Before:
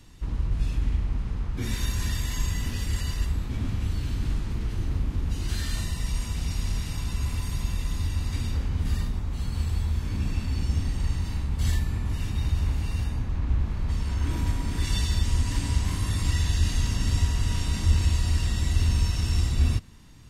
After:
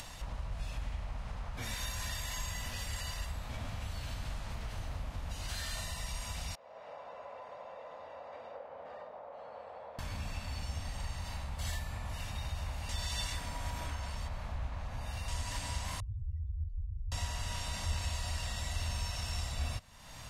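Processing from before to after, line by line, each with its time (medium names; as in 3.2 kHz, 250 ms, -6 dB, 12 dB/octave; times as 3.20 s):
6.55–9.99 s: ladder band-pass 590 Hz, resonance 60%
12.89–15.28 s: reverse
16.00–17.12 s: spectral contrast enhancement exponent 3.6
whole clip: resonant low shelf 470 Hz -9 dB, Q 3; upward compressor, threshold -28 dBFS; trim -5.5 dB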